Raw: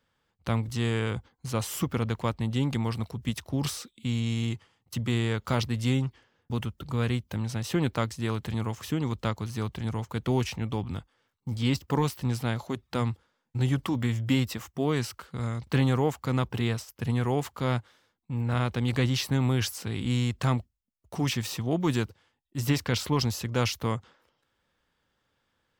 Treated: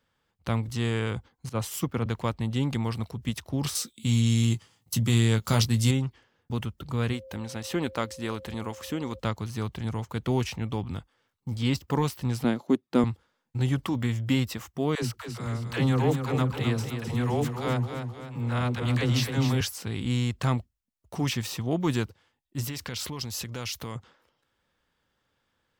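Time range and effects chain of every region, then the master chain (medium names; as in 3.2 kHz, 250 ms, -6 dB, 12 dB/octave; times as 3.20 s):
1.49–2.06 s: gate -38 dBFS, range -7 dB + three bands expanded up and down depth 100%
3.75–5.91 s: high-pass 130 Hz 6 dB/octave + tone controls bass +8 dB, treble +12 dB + doubling 18 ms -9 dB
7.12–9.18 s: peaking EQ 130 Hz -10.5 dB 0.8 oct + whistle 530 Hz -44 dBFS
12.44–13.04 s: high-pass 190 Hz + peaking EQ 270 Hz +13 dB 1.7 oct + upward expansion, over -42 dBFS
14.95–19.61 s: phase dispersion lows, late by 78 ms, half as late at 390 Hz + modulated delay 261 ms, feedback 48%, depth 51 cents, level -7.5 dB
22.64–23.96 s: compression 4:1, threshold -34 dBFS + treble shelf 2.2 kHz +6.5 dB
whole clip: none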